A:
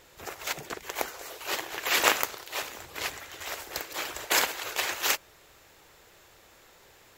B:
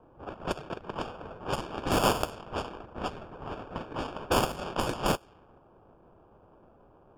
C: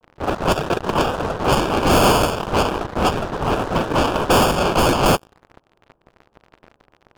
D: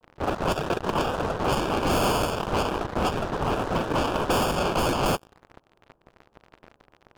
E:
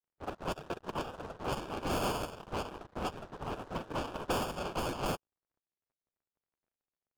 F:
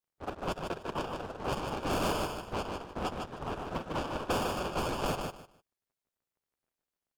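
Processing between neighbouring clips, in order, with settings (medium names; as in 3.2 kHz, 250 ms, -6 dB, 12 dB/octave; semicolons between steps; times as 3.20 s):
sample-and-hold 22×; wavefolder -14 dBFS; level-controlled noise filter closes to 930 Hz, open at -24.5 dBFS
waveshaping leveller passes 5; vibrato 0.34 Hz 29 cents; trim +2 dB
compression, threshold -20 dBFS, peak gain reduction 7.5 dB; trim -2 dB
upward expansion 2.5:1, over -43 dBFS; trim -7.5 dB
on a send: feedback delay 151 ms, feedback 20%, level -5 dB; on the sum: loudspeaker Doppler distortion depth 0.13 ms; trim +1.5 dB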